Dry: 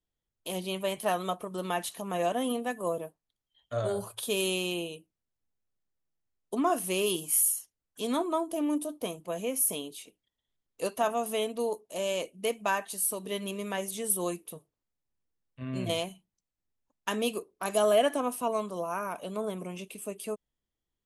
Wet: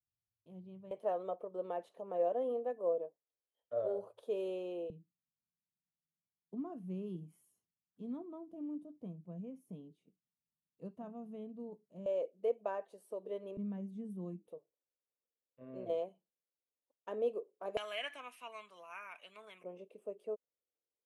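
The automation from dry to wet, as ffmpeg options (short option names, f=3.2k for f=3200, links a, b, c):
-af "asetnsamples=n=441:p=0,asendcmd='0.91 bandpass f 510;4.9 bandpass f 170;12.06 bandpass f 510;13.57 bandpass f 200;14.48 bandpass f 510;17.77 bandpass f 2300;19.64 bandpass f 510',bandpass=f=110:t=q:w=3.6:csg=0"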